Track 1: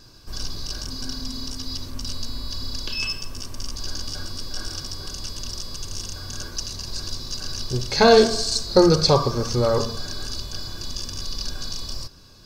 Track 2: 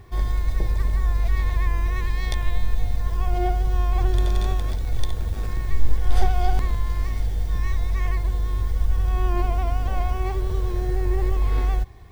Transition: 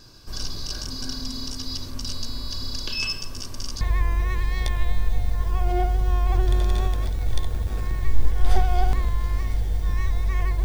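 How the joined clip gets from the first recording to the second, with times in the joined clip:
track 1
3.81 s: go over to track 2 from 1.47 s

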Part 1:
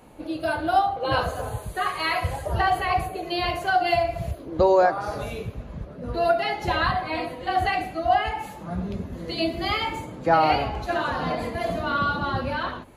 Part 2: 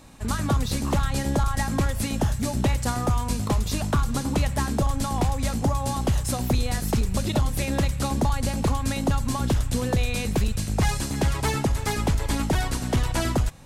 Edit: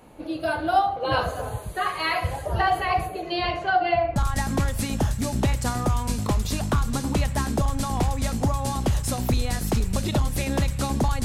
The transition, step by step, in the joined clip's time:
part 1
3.22–4.16 s: low-pass 9.1 kHz -> 1.8 kHz
4.16 s: go over to part 2 from 1.37 s

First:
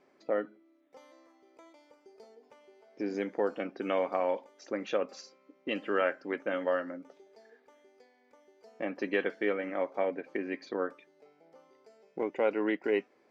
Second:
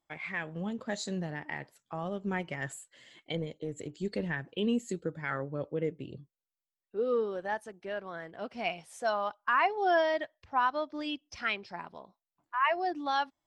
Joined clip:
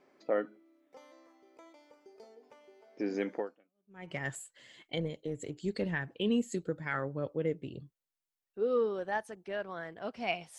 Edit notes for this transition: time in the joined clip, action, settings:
first
3.74 s: go over to second from 2.11 s, crossfade 0.74 s exponential

